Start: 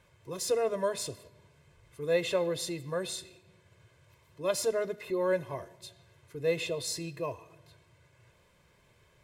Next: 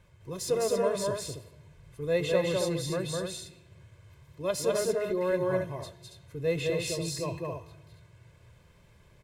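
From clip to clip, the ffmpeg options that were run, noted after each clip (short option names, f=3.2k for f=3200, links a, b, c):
-filter_complex "[0:a]lowshelf=f=180:g=11,asplit=2[a][b];[b]aecho=0:1:207|277:0.794|0.501[c];[a][c]amix=inputs=2:normalize=0,volume=-1.5dB"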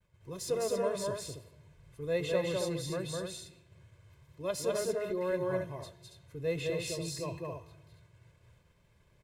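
-af "agate=range=-33dB:threshold=-54dB:ratio=3:detection=peak,volume=-4.5dB"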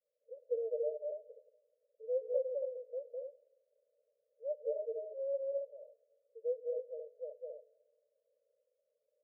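-af "asuperpass=centerf=530:order=12:qfactor=2.9,volume=-2.5dB"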